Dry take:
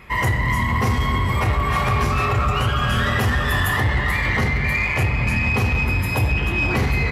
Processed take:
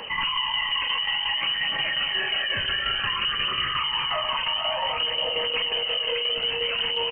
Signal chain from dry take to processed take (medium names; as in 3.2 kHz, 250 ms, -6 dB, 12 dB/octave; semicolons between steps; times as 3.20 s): on a send: delay 472 ms -8 dB; on the sum: frequency inversion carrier 3 kHz; flange 0.57 Hz, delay 0.2 ms, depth 1.8 ms, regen +43%; peak limiter -17 dBFS, peak gain reduction 7.5 dB; tremolo saw down 5.6 Hz, depth 60%; level flattener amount 50%